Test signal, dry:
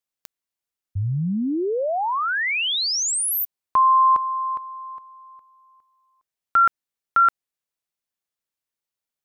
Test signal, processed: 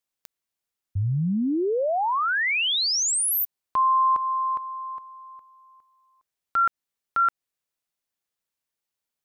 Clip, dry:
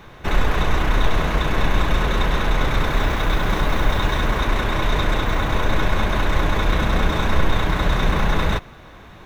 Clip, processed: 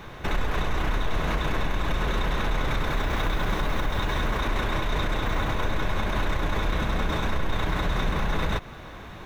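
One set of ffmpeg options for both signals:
-filter_complex "[0:a]asplit=2[s0][s1];[s1]acompressor=threshold=0.0562:ratio=6:attack=1.4:release=302:knee=6:detection=peak,volume=1.26[s2];[s0][s2]amix=inputs=2:normalize=0,alimiter=limit=0.282:level=0:latency=1:release=67,volume=0.531"

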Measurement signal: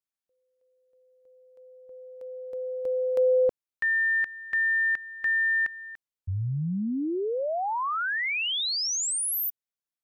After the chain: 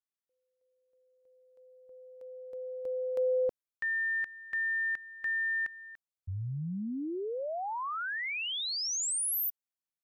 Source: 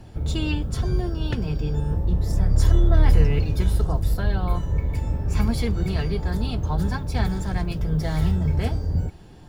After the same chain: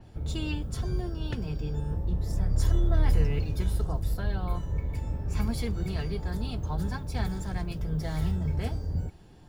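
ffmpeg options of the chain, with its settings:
-af "adynamicequalizer=threshold=0.00794:dfrequency=5700:dqfactor=0.7:tfrequency=5700:tqfactor=0.7:attack=5:release=100:ratio=0.375:range=2:mode=boostabove:tftype=highshelf,volume=0.447"

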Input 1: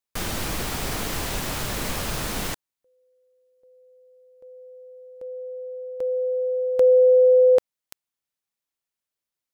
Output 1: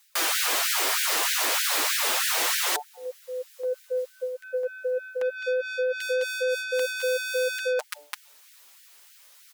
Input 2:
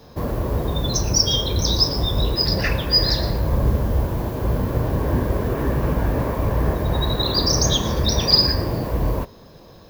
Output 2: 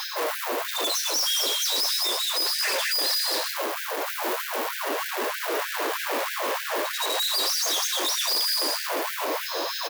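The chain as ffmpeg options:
-filter_complex "[0:a]acrossover=split=250|2800[s0][s1][s2];[s1]acompressor=threshold=0.141:ratio=6:knee=2.83:detection=peak[s3];[s0][s3][s2]amix=inputs=3:normalize=0,flanger=delay=4.6:depth=8.8:regen=13:speed=0.38:shape=triangular,highshelf=f=9300:g=-6.5,aecho=1:1:209:0.473,asplit=2[s4][s5];[s5]highpass=f=720:p=1,volume=79.4,asoftclip=type=tanh:threshold=0.596[s6];[s4][s6]amix=inputs=2:normalize=0,lowpass=f=2500:p=1,volume=0.501,aemphasis=mode=production:type=75fm,bandreject=f=146.8:t=h:w=4,bandreject=f=293.6:t=h:w=4,bandreject=f=440.4:t=h:w=4,bandreject=f=587.2:t=h:w=4,bandreject=f=734:t=h:w=4,bandreject=f=880.8:t=h:w=4,asplit=2[s7][s8];[s8]alimiter=limit=0.355:level=0:latency=1:release=402,volume=0.891[s9];[s7][s9]amix=inputs=2:normalize=0,asoftclip=type=tanh:threshold=0.237,highpass=58,areverse,acompressor=threshold=0.0708:ratio=20:attack=4.3:release=482:knee=1:detection=rms,areverse,afftfilt=real='re*gte(b*sr/1024,250*pow(1500/250,0.5+0.5*sin(2*PI*3.2*pts/sr)))':imag='im*gte(b*sr/1024,250*pow(1500/250,0.5+0.5*sin(2*PI*3.2*pts/sr)))':win_size=1024:overlap=0.75"

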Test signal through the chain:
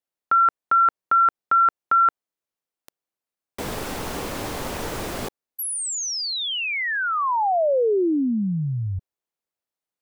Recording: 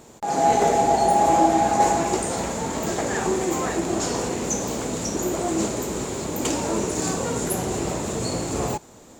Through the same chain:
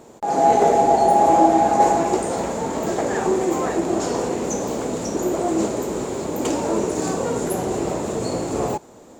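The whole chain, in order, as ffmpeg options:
-af "equalizer=f=490:t=o:w=2.9:g=8.5,volume=0.631"

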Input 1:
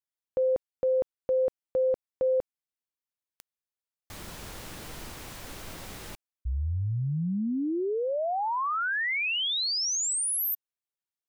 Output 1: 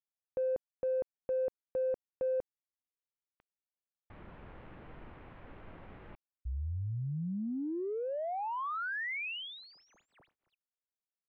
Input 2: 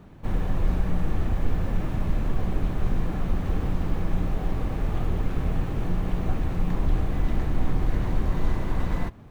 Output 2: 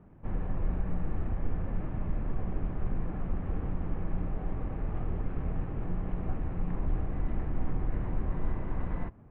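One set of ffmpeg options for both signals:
-af "adynamicsmooth=sensitivity=3:basefreq=2000,lowpass=f=2900:w=0.5412,lowpass=f=2900:w=1.3066,volume=0.447"

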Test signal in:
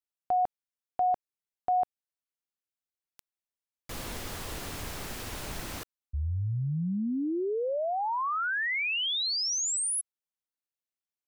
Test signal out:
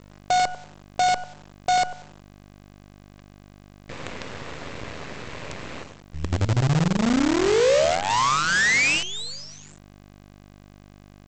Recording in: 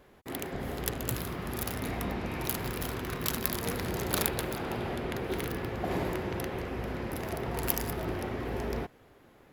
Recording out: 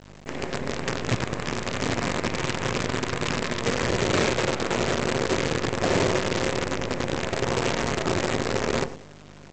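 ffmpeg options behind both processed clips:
-filter_complex "[0:a]acontrast=89,aeval=exprs='val(0)+0.0112*(sin(2*PI*50*n/s)+sin(2*PI*2*50*n/s)/2+sin(2*PI*3*50*n/s)/3+sin(2*PI*4*50*n/s)/4+sin(2*PI*5*50*n/s)/5)':c=same,highpass=110,equalizer=f=200:t=q:w=4:g=-5,equalizer=f=340:t=q:w=4:g=-4,equalizer=f=540:t=q:w=4:g=3,equalizer=f=790:t=q:w=4:g=-8,equalizer=f=1400:t=q:w=4:g=-5,equalizer=f=3200:t=q:w=4:g=-7,lowpass=f=3400:w=0.5412,lowpass=f=3400:w=1.3066,asplit=2[s0][s1];[s1]adelay=94,lowpass=f=1500:p=1,volume=0.447,asplit=2[s2][s3];[s3]adelay=94,lowpass=f=1500:p=1,volume=0.32,asplit=2[s4][s5];[s5]adelay=94,lowpass=f=1500:p=1,volume=0.32,asplit=2[s6][s7];[s7]adelay=94,lowpass=f=1500:p=1,volume=0.32[s8];[s0][s2][s4][s6][s8]amix=inputs=5:normalize=0,aresample=16000,acrusher=bits=5:dc=4:mix=0:aa=0.000001,aresample=44100,volume=1.41"

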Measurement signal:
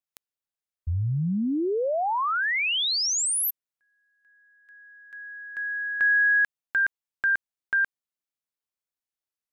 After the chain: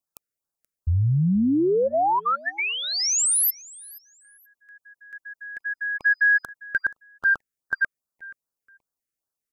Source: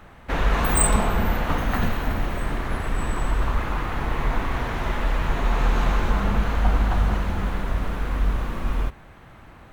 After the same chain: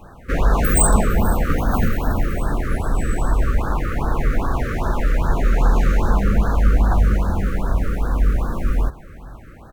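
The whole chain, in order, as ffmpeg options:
-af "equalizer=f=3400:t=o:w=1:g=-10,aecho=1:1:478|956:0.0794|0.0175,acontrast=36,afftfilt=real='re*(1-between(b*sr/1024,770*pow(2600/770,0.5+0.5*sin(2*PI*2.5*pts/sr))/1.41,770*pow(2600/770,0.5+0.5*sin(2*PI*2.5*pts/sr))*1.41))':imag='im*(1-between(b*sr/1024,770*pow(2600/770,0.5+0.5*sin(2*PI*2.5*pts/sr))/1.41,770*pow(2600/770,0.5+0.5*sin(2*PI*2.5*pts/sr))*1.41))':win_size=1024:overlap=0.75"

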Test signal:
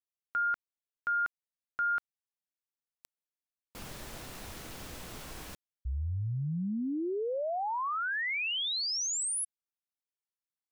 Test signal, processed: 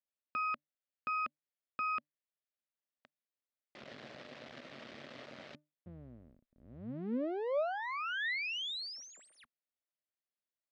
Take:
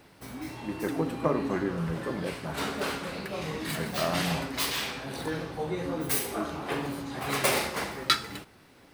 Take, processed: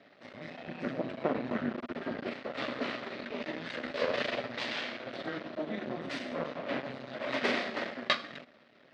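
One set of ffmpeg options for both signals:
-af "afreqshift=-150,aeval=exprs='max(val(0),0)':c=same,highpass=230,equalizer=f=240:t=q:w=4:g=8,equalizer=f=590:t=q:w=4:g=9,equalizer=f=920:t=q:w=4:g=-5,equalizer=f=1900:t=q:w=4:g=4,lowpass=f=4300:w=0.5412,lowpass=f=4300:w=1.3066"

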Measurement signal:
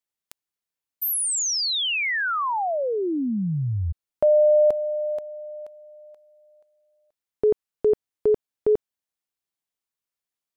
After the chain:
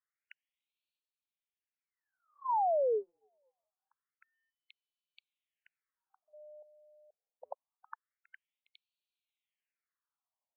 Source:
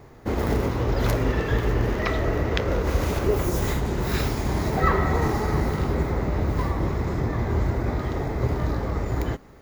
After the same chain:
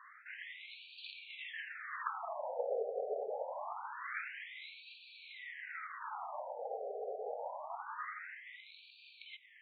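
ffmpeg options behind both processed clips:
-af "areverse,acompressor=threshold=0.0251:ratio=8:attack=31:release=105:knee=1:detection=rms,areverse,afftfilt=real='re*between(b*sr/1024,550*pow(3300/550,0.5+0.5*sin(2*PI*0.25*pts/sr))/1.41,550*pow(3300/550,0.5+0.5*sin(2*PI*0.25*pts/sr))*1.41)':imag='im*between(b*sr/1024,550*pow(3300/550,0.5+0.5*sin(2*PI*0.25*pts/sr))/1.41,550*pow(3300/550,0.5+0.5*sin(2*PI*0.25*pts/sr))*1.41)':win_size=1024:overlap=0.75,volume=1.5"

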